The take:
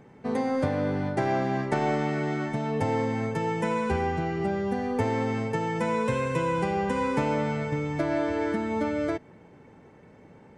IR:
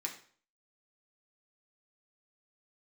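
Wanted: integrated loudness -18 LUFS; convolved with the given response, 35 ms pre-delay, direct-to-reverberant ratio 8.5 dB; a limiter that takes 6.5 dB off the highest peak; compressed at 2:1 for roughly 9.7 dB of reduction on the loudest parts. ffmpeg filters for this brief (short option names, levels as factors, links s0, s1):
-filter_complex "[0:a]acompressor=threshold=0.01:ratio=2,alimiter=level_in=1.78:limit=0.0631:level=0:latency=1,volume=0.562,asplit=2[s0][s1];[1:a]atrim=start_sample=2205,adelay=35[s2];[s1][s2]afir=irnorm=-1:irlink=0,volume=0.355[s3];[s0][s3]amix=inputs=2:normalize=0,volume=9.44"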